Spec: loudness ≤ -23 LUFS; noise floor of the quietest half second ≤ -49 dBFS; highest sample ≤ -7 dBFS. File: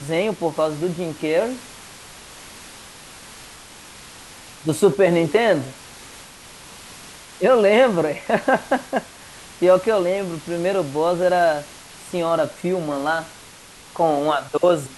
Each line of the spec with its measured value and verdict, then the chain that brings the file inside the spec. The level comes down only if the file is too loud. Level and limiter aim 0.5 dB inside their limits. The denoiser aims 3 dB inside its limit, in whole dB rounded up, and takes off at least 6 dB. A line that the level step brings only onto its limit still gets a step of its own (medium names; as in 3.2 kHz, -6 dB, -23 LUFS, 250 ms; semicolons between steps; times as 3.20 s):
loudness -20.0 LUFS: fail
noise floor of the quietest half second -44 dBFS: fail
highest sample -4.5 dBFS: fail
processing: noise reduction 6 dB, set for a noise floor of -44 dBFS; trim -3.5 dB